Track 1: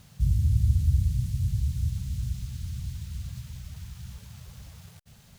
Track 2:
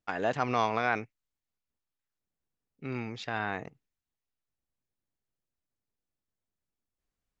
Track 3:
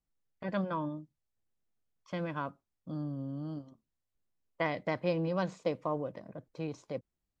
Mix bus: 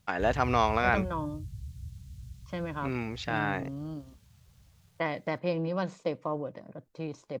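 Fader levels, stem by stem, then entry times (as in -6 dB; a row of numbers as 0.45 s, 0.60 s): -14.5 dB, +2.5 dB, +1.0 dB; 0.00 s, 0.00 s, 0.40 s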